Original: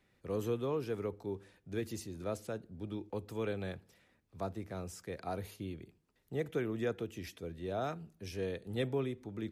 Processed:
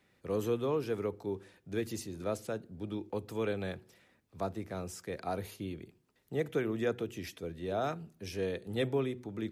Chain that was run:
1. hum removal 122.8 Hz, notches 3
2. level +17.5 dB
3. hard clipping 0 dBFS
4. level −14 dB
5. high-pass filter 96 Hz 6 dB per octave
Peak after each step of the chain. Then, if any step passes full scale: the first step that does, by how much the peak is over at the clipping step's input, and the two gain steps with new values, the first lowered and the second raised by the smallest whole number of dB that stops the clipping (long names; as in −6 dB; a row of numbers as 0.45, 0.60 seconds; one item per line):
−23.0, −5.5, −5.5, −19.5, −20.0 dBFS
no step passes full scale